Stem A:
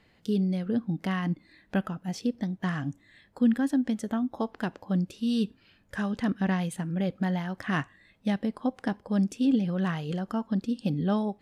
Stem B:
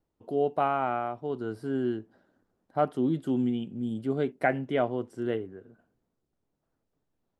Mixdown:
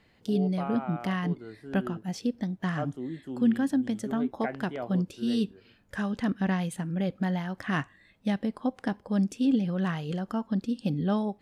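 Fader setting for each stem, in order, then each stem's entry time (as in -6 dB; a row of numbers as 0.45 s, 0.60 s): -0.5 dB, -9.5 dB; 0.00 s, 0.00 s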